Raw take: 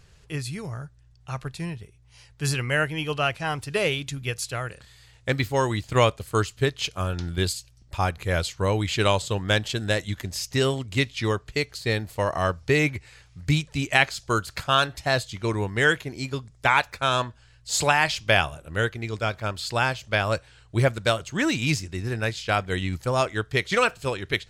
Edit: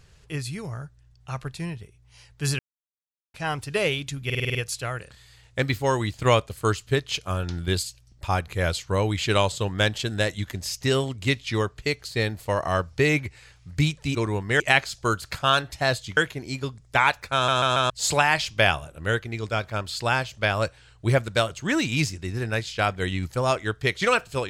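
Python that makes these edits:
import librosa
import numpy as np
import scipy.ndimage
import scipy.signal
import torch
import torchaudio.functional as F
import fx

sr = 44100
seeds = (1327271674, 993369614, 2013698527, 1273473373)

y = fx.edit(x, sr, fx.silence(start_s=2.59, length_s=0.75),
    fx.stutter(start_s=4.25, slice_s=0.05, count=7),
    fx.move(start_s=15.42, length_s=0.45, to_s=13.85),
    fx.stutter_over(start_s=17.04, slice_s=0.14, count=4), tone=tone)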